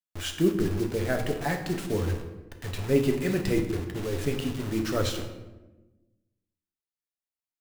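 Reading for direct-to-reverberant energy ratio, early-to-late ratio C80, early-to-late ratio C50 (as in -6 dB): 3.5 dB, 10.0 dB, 7.5 dB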